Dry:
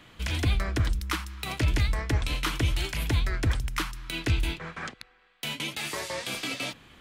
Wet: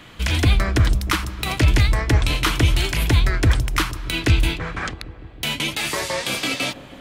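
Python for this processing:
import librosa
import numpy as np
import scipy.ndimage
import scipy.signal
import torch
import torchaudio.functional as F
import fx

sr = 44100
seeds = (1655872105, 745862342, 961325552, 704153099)

y = fx.echo_bbd(x, sr, ms=158, stages=1024, feedback_pct=80, wet_db=-16)
y = F.gain(torch.from_numpy(y), 9.0).numpy()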